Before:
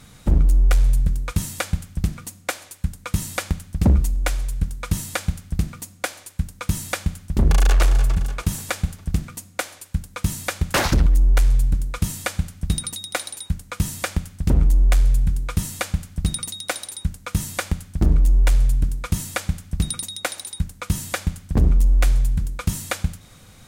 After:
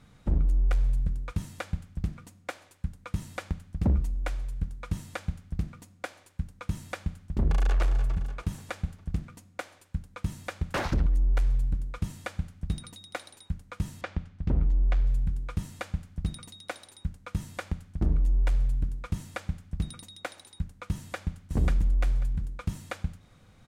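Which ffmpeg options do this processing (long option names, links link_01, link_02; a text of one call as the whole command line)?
ffmpeg -i in.wav -filter_complex "[0:a]asettb=1/sr,asplit=3[link_01][link_02][link_03];[link_01]atrim=end=14.014[link_04];[link_02]atrim=start=14.01:end=15.07,asetpts=PTS-STARTPTS,afade=type=in:duration=0.004:curve=qsin,afade=type=out:start_time=1.056:duration=0.004:curve=qsin,lowpass=4300[link_05];[link_03]atrim=start=15.066[link_06];[link_04][link_05]acrossfade=duration=0.004:curve1=hsin:curve2=qsin[link_07];[link_07][link_06]acrossfade=duration=0.004:curve1=qsin:curve2=hsin,asplit=2[link_08][link_09];[link_09]afade=type=in:start_time=20.96:duration=0.01,afade=type=out:start_time=21.4:duration=0.01,aecho=0:1:540|1080|1620:0.841395|0.126209|0.0189314[link_10];[link_08][link_10]amix=inputs=2:normalize=0,lowpass=frequency=2100:poles=1,volume=-8.5dB" out.wav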